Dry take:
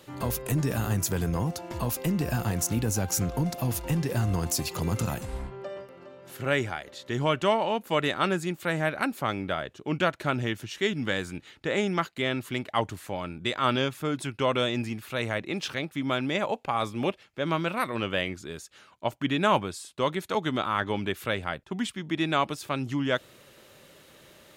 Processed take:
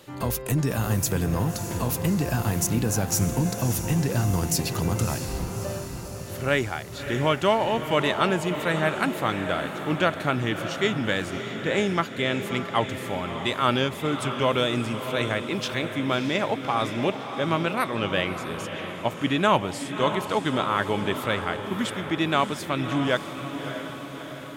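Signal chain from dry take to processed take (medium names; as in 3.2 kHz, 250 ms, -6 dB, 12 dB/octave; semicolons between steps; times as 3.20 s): echo that smears into a reverb 622 ms, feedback 60%, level -8.5 dB; trim +2.5 dB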